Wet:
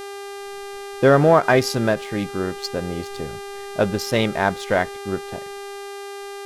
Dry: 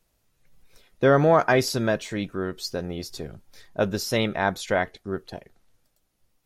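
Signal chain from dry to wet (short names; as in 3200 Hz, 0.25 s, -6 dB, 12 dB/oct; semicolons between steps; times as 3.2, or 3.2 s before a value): Wiener smoothing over 9 samples; buzz 400 Hz, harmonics 31, -38 dBFS -6 dB/oct; ending taper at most 330 dB/s; gain +4 dB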